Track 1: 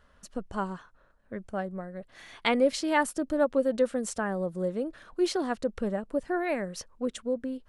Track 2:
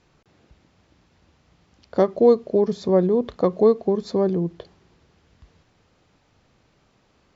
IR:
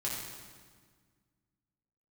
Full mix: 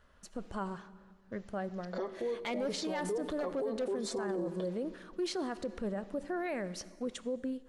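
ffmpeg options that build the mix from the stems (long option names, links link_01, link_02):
-filter_complex "[0:a]volume=19dB,asoftclip=hard,volume=-19dB,volume=-3.5dB,asplit=3[link_01][link_02][link_03];[link_02]volume=-18.5dB[link_04];[1:a]highpass=350,acompressor=threshold=-23dB:ratio=6,asplit=2[link_05][link_06];[link_06]adelay=5.6,afreqshift=-0.48[link_07];[link_05][link_07]amix=inputs=2:normalize=1,volume=0.5dB,asplit=2[link_08][link_09];[link_09]volume=-17.5dB[link_10];[link_03]apad=whole_len=324640[link_11];[link_08][link_11]sidechaingate=range=-33dB:threshold=-51dB:ratio=16:detection=peak[link_12];[2:a]atrim=start_sample=2205[link_13];[link_04][link_10]amix=inputs=2:normalize=0[link_14];[link_14][link_13]afir=irnorm=-1:irlink=0[link_15];[link_01][link_12][link_15]amix=inputs=3:normalize=0,acrossover=split=8200[link_16][link_17];[link_17]acompressor=threshold=-55dB:ratio=4:attack=1:release=60[link_18];[link_16][link_18]amix=inputs=2:normalize=0,alimiter=level_in=4dB:limit=-24dB:level=0:latency=1:release=39,volume=-4dB"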